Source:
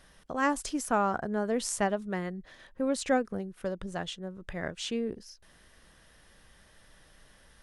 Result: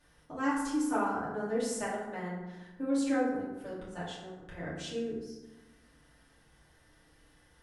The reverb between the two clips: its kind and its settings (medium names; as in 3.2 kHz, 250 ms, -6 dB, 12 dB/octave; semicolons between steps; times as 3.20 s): FDN reverb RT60 1.1 s, low-frequency decay 1.3×, high-frequency decay 0.5×, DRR -9 dB; trim -13.5 dB